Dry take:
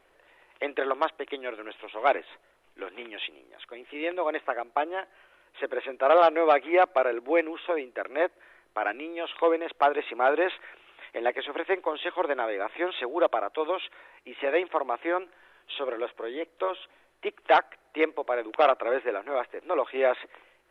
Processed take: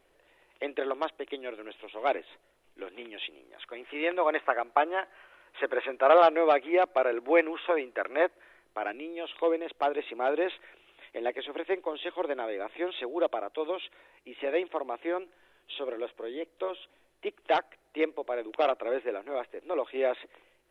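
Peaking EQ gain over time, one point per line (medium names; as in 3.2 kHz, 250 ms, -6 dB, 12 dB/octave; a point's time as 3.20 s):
peaking EQ 1.3 kHz 2.1 oct
3.18 s -7.5 dB
3.79 s +3.5 dB
5.84 s +3.5 dB
6.80 s -7.5 dB
7.32 s +2.5 dB
8.06 s +2.5 dB
8.99 s -9 dB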